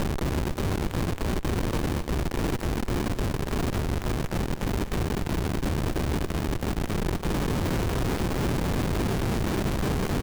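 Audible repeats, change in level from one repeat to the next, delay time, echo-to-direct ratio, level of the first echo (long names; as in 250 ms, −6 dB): 3, −7.0 dB, 249 ms, −10.0 dB, −11.0 dB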